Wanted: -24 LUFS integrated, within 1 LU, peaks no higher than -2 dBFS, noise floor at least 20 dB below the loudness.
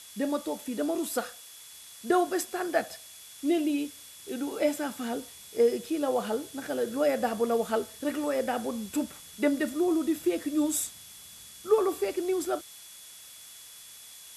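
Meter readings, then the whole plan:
steady tone 3400 Hz; tone level -54 dBFS; noise floor -49 dBFS; noise floor target -50 dBFS; loudness -29.5 LUFS; peak -12.0 dBFS; loudness target -24.0 LUFS
-> notch 3400 Hz, Q 30; denoiser 6 dB, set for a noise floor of -49 dBFS; gain +5.5 dB

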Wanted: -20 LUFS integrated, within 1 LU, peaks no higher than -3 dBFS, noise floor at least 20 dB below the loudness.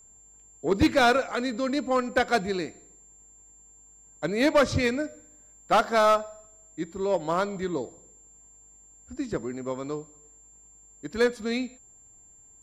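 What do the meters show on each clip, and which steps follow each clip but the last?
clipped 0.6%; flat tops at -14.5 dBFS; steady tone 7300 Hz; tone level -52 dBFS; loudness -26.5 LUFS; peak -14.5 dBFS; loudness target -20.0 LUFS
-> clip repair -14.5 dBFS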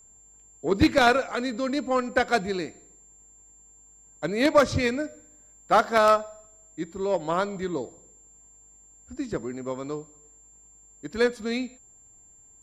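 clipped 0.0%; steady tone 7300 Hz; tone level -52 dBFS
-> notch 7300 Hz, Q 30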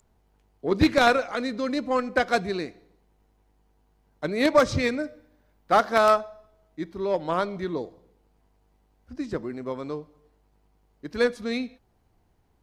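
steady tone none; loudness -25.0 LUFS; peak -5.5 dBFS; loudness target -20.0 LUFS
-> gain +5 dB; limiter -3 dBFS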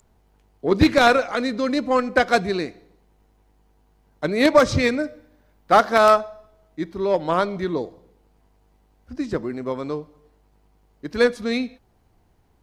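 loudness -20.5 LUFS; peak -3.0 dBFS; noise floor -61 dBFS

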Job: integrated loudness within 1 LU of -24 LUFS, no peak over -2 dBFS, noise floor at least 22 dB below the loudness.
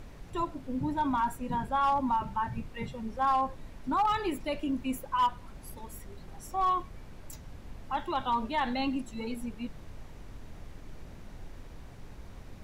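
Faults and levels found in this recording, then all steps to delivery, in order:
clipped 0.3%; flat tops at -21.0 dBFS; noise floor -48 dBFS; noise floor target -54 dBFS; loudness -31.5 LUFS; peak -21.0 dBFS; loudness target -24.0 LUFS
-> clip repair -21 dBFS; noise print and reduce 6 dB; gain +7.5 dB

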